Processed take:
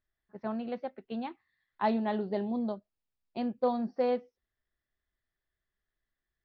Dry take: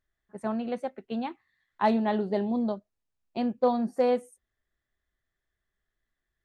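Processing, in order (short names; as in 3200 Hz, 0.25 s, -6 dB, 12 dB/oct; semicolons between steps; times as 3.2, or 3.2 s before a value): steep low-pass 5500 Hz 96 dB/oct; gain -4.5 dB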